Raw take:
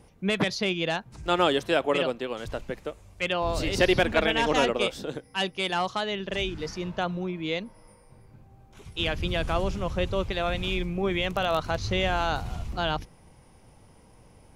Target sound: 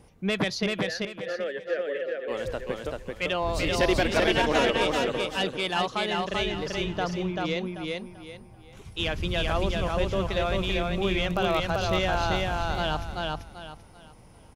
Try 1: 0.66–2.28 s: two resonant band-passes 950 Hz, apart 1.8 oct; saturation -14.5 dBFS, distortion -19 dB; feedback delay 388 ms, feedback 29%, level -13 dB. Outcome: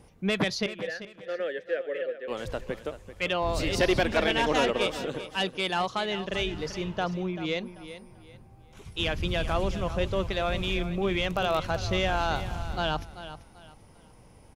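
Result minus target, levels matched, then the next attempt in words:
echo-to-direct -10.5 dB
0.66–2.28 s: two resonant band-passes 950 Hz, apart 1.8 oct; saturation -14.5 dBFS, distortion -19 dB; feedback delay 388 ms, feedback 29%, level -2.5 dB

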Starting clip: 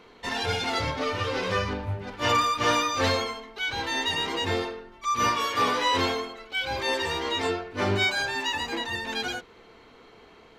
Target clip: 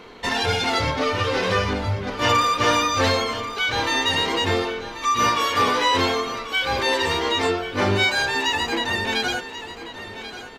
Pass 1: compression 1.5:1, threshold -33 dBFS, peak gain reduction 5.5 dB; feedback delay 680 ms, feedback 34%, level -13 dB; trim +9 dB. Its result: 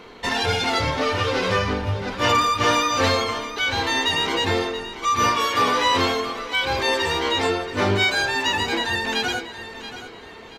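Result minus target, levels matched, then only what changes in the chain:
echo 407 ms early
change: feedback delay 1087 ms, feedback 34%, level -13 dB

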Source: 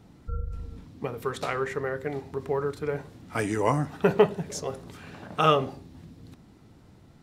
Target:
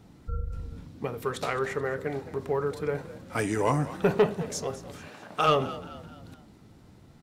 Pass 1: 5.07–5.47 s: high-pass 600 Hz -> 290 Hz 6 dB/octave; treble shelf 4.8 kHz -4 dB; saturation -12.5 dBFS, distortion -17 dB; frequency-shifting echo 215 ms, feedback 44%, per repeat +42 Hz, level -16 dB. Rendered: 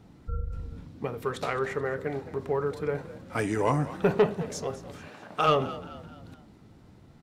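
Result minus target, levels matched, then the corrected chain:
8 kHz band -4.0 dB
5.07–5.47 s: high-pass 600 Hz -> 290 Hz 6 dB/octave; treble shelf 4.8 kHz +2 dB; saturation -12.5 dBFS, distortion -16 dB; frequency-shifting echo 215 ms, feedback 44%, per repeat +42 Hz, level -16 dB

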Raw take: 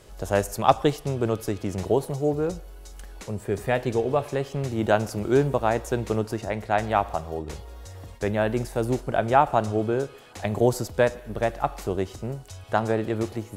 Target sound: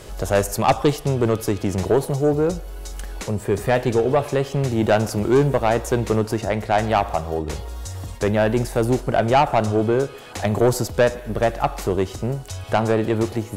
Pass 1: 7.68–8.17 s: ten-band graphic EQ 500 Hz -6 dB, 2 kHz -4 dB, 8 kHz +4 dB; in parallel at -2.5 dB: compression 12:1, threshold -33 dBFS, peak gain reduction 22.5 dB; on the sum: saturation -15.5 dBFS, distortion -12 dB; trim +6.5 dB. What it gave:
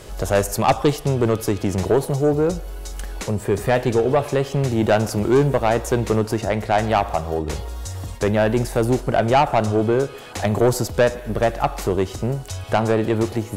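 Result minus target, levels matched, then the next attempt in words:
compression: peak gain reduction -8 dB
7.68–8.17 s: ten-band graphic EQ 500 Hz -6 dB, 2 kHz -4 dB, 8 kHz +4 dB; in parallel at -2.5 dB: compression 12:1, threshold -41.5 dBFS, peak gain reduction 30 dB; on the sum: saturation -15.5 dBFS, distortion -12 dB; trim +6.5 dB

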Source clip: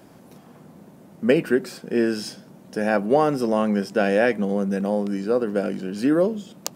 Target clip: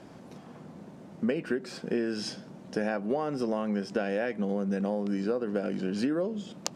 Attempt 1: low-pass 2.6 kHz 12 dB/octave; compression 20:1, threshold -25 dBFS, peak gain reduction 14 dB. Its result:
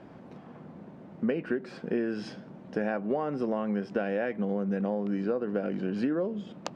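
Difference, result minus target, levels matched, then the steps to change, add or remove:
8 kHz band -13.5 dB
change: low-pass 6.7 kHz 12 dB/octave

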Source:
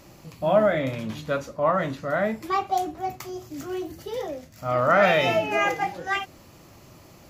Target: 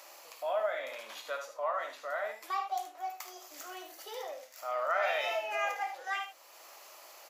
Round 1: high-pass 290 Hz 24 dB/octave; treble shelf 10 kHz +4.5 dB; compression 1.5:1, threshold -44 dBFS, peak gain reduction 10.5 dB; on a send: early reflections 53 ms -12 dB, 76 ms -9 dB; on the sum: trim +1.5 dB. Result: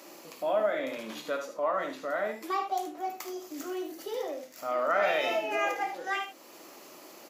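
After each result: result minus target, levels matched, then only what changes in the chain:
250 Hz band +16.5 dB; compression: peak gain reduction -2.5 dB
change: high-pass 600 Hz 24 dB/octave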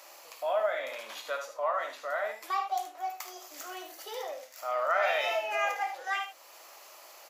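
compression: peak gain reduction -3 dB
change: compression 1.5:1, threshold -53.5 dBFS, peak gain reduction 13 dB

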